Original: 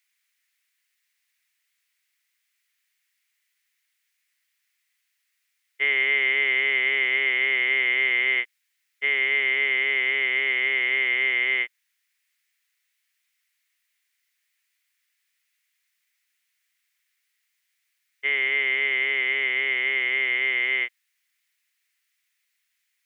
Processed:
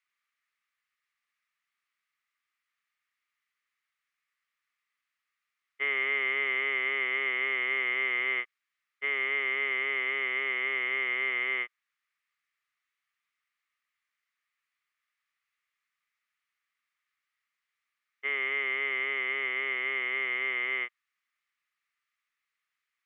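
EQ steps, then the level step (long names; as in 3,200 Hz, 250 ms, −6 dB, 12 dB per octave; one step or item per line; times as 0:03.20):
low-pass filter 1,600 Hz 6 dB per octave
parametric band 1,200 Hz +14 dB 0.28 octaves
−3.5 dB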